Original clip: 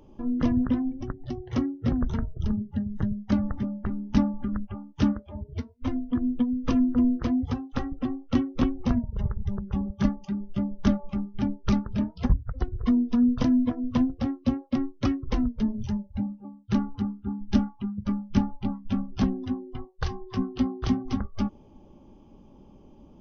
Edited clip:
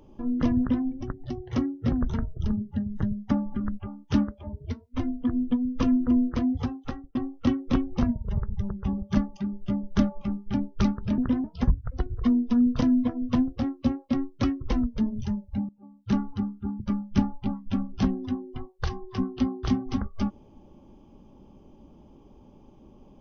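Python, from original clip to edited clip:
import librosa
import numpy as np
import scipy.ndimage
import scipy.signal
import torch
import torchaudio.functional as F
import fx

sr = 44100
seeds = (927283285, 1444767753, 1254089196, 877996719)

y = fx.edit(x, sr, fx.duplicate(start_s=0.59, length_s=0.26, to_s=12.06),
    fx.cut(start_s=3.31, length_s=0.88),
    fx.fade_out_span(start_s=7.61, length_s=0.42),
    fx.fade_in_from(start_s=16.31, length_s=0.45, floor_db=-19.0),
    fx.cut(start_s=17.42, length_s=0.57), tone=tone)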